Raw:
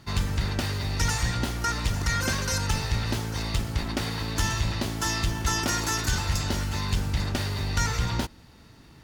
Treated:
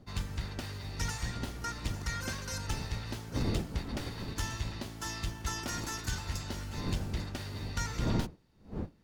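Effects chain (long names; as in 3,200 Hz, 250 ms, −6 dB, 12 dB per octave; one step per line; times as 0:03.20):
wind on the microphone 240 Hz −32 dBFS
expander for the loud parts 1.5 to 1, over −43 dBFS
level −7.5 dB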